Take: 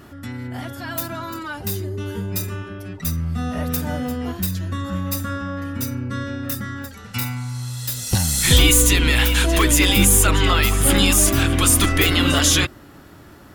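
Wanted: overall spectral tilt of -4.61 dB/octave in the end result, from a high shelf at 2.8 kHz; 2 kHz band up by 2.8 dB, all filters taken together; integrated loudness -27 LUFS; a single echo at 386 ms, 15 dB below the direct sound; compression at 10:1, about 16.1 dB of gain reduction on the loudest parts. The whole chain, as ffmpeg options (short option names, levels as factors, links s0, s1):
-af "equalizer=f=2000:t=o:g=7,highshelf=f=2800:g=-8,acompressor=threshold=0.0501:ratio=10,aecho=1:1:386:0.178,volume=1.5"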